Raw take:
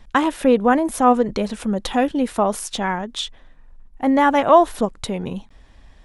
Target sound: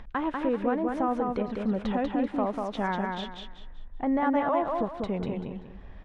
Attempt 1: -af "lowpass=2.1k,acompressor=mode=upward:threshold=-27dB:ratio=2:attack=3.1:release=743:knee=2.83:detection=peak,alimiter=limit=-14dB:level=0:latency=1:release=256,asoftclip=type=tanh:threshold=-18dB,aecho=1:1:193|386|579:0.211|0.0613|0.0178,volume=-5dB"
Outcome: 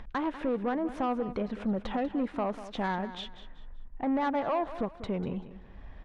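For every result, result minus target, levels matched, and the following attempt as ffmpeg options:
soft clip: distortion +20 dB; echo-to-direct -10 dB
-af "lowpass=2.1k,acompressor=mode=upward:threshold=-27dB:ratio=2:attack=3.1:release=743:knee=2.83:detection=peak,alimiter=limit=-14dB:level=0:latency=1:release=256,asoftclip=type=tanh:threshold=-6.5dB,aecho=1:1:193|386|579:0.211|0.0613|0.0178,volume=-5dB"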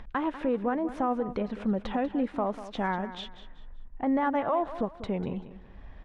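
echo-to-direct -10 dB
-af "lowpass=2.1k,acompressor=mode=upward:threshold=-27dB:ratio=2:attack=3.1:release=743:knee=2.83:detection=peak,alimiter=limit=-14dB:level=0:latency=1:release=256,asoftclip=type=tanh:threshold=-6.5dB,aecho=1:1:193|386|579|772:0.668|0.194|0.0562|0.0163,volume=-5dB"

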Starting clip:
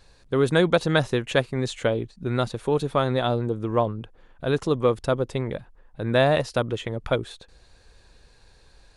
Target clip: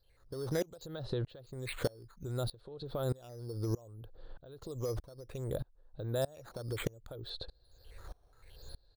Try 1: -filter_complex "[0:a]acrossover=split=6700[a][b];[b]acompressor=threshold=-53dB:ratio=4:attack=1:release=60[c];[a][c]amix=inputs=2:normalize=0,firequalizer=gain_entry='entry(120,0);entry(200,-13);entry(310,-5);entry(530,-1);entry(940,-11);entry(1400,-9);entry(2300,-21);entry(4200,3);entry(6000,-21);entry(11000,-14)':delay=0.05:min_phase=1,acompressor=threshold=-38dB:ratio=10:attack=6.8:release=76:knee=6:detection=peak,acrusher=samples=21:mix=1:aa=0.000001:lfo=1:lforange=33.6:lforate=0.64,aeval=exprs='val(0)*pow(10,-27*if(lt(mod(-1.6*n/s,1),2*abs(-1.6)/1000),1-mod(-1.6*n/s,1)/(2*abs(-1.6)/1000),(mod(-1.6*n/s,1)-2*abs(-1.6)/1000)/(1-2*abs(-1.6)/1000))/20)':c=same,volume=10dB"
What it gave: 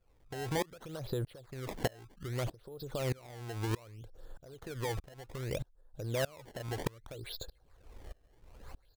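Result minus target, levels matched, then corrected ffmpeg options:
decimation with a swept rate: distortion +10 dB
-filter_complex "[0:a]acrossover=split=6700[a][b];[b]acompressor=threshold=-53dB:ratio=4:attack=1:release=60[c];[a][c]amix=inputs=2:normalize=0,firequalizer=gain_entry='entry(120,0);entry(200,-13);entry(310,-5);entry(530,-1);entry(940,-11);entry(1400,-9);entry(2300,-21);entry(4200,3);entry(6000,-21);entry(11000,-14)':delay=0.05:min_phase=1,acompressor=threshold=-38dB:ratio=10:attack=6.8:release=76:knee=6:detection=peak,acrusher=samples=5:mix=1:aa=0.000001:lfo=1:lforange=8:lforate=0.64,aeval=exprs='val(0)*pow(10,-27*if(lt(mod(-1.6*n/s,1),2*abs(-1.6)/1000),1-mod(-1.6*n/s,1)/(2*abs(-1.6)/1000),(mod(-1.6*n/s,1)-2*abs(-1.6)/1000)/(1-2*abs(-1.6)/1000))/20)':c=same,volume=10dB"

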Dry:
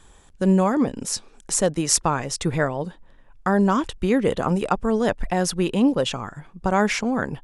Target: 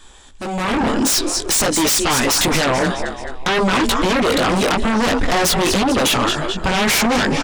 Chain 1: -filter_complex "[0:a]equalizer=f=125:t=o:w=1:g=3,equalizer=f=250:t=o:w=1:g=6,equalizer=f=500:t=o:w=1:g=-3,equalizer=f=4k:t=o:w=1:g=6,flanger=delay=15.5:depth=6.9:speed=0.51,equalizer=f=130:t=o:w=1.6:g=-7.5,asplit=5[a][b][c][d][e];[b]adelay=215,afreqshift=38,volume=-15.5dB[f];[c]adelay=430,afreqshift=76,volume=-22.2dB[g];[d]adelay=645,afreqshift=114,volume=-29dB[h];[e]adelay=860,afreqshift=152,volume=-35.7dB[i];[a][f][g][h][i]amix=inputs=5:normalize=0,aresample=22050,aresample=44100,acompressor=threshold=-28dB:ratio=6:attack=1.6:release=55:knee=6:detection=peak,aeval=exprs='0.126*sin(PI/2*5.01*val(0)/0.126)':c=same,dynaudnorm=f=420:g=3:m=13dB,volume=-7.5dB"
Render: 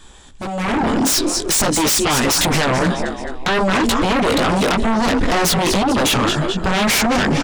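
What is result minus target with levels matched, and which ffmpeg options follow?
125 Hz band +2.5 dB
-filter_complex "[0:a]equalizer=f=125:t=o:w=1:g=3,equalizer=f=250:t=o:w=1:g=6,equalizer=f=500:t=o:w=1:g=-3,equalizer=f=4k:t=o:w=1:g=6,flanger=delay=15.5:depth=6.9:speed=0.51,equalizer=f=130:t=o:w=1.6:g=-17,asplit=5[a][b][c][d][e];[b]adelay=215,afreqshift=38,volume=-15.5dB[f];[c]adelay=430,afreqshift=76,volume=-22.2dB[g];[d]adelay=645,afreqshift=114,volume=-29dB[h];[e]adelay=860,afreqshift=152,volume=-35.7dB[i];[a][f][g][h][i]amix=inputs=5:normalize=0,aresample=22050,aresample=44100,acompressor=threshold=-28dB:ratio=6:attack=1.6:release=55:knee=6:detection=peak,aeval=exprs='0.126*sin(PI/2*5.01*val(0)/0.126)':c=same,dynaudnorm=f=420:g=3:m=13dB,volume=-7.5dB"

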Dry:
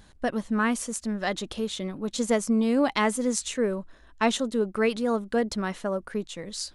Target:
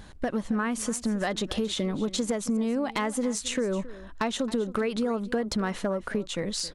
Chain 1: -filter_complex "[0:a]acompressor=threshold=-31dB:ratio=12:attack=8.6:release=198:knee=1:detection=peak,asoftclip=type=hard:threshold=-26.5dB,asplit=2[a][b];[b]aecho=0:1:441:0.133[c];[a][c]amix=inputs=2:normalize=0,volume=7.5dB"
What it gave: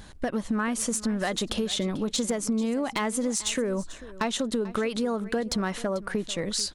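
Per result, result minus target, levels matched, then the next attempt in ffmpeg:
echo 0.171 s late; 8000 Hz band +3.5 dB
-filter_complex "[0:a]acompressor=threshold=-31dB:ratio=12:attack=8.6:release=198:knee=1:detection=peak,asoftclip=type=hard:threshold=-26.5dB,asplit=2[a][b];[b]aecho=0:1:270:0.133[c];[a][c]amix=inputs=2:normalize=0,volume=7.5dB"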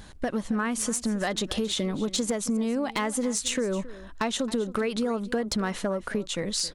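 8000 Hz band +3.5 dB
-filter_complex "[0:a]acompressor=threshold=-31dB:ratio=12:attack=8.6:release=198:knee=1:detection=peak,highshelf=f=3.5k:g=-5,asoftclip=type=hard:threshold=-26.5dB,asplit=2[a][b];[b]aecho=0:1:270:0.133[c];[a][c]amix=inputs=2:normalize=0,volume=7.5dB"

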